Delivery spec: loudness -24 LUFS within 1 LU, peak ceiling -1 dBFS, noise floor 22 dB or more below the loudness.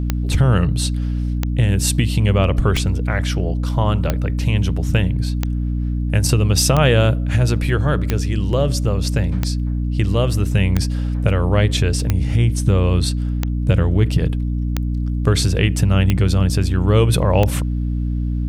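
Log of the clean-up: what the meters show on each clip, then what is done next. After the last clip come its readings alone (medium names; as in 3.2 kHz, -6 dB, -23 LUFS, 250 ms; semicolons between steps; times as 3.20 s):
clicks found 14; hum 60 Hz; highest harmonic 300 Hz; hum level -18 dBFS; loudness -18.5 LUFS; peak level -2.0 dBFS; loudness target -24.0 LUFS
-> de-click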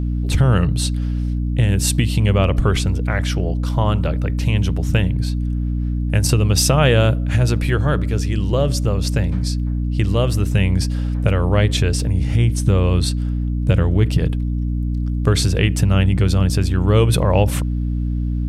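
clicks found 0; hum 60 Hz; highest harmonic 300 Hz; hum level -18 dBFS
-> de-hum 60 Hz, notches 5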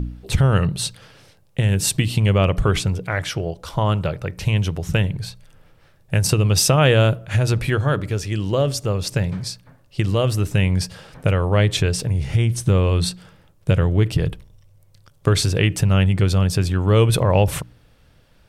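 hum not found; loudness -20.0 LUFS; peak level -4.0 dBFS; loudness target -24.0 LUFS
-> trim -4 dB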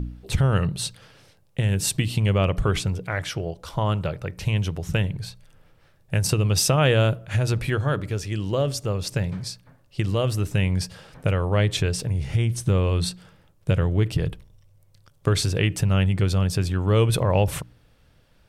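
loudness -24.0 LUFS; peak level -8.0 dBFS; noise floor -59 dBFS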